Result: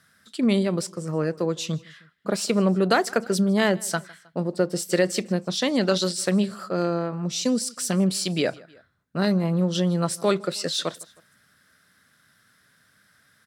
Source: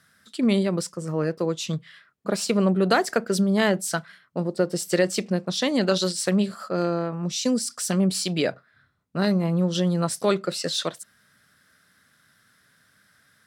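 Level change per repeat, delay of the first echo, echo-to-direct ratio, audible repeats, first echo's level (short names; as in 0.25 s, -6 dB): -5.0 dB, 0.157 s, -23.0 dB, 2, -24.0 dB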